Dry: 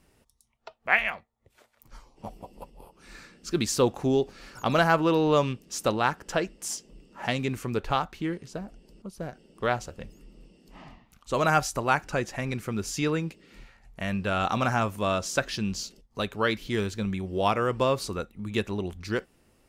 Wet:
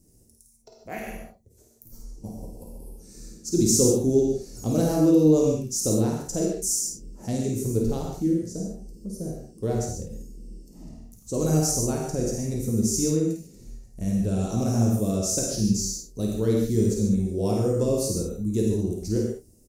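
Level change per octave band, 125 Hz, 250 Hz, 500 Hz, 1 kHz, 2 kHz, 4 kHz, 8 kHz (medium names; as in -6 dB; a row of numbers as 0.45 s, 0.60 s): +6.5 dB, +7.0 dB, +2.5 dB, -11.0 dB, -18.0 dB, -2.0 dB, +10.5 dB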